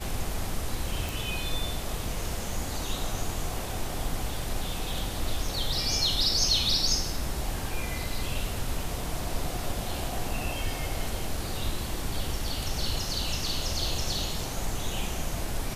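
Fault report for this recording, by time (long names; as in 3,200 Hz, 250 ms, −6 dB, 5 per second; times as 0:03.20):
0:01.09: click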